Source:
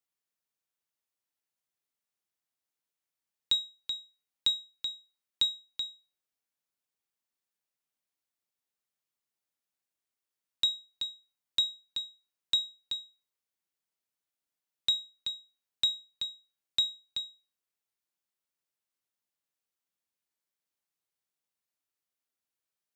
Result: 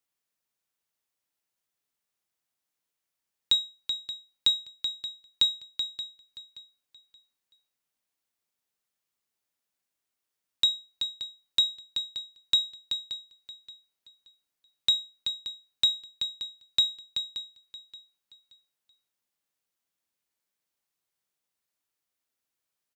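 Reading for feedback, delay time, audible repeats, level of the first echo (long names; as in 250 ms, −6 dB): 29%, 576 ms, 2, −14.0 dB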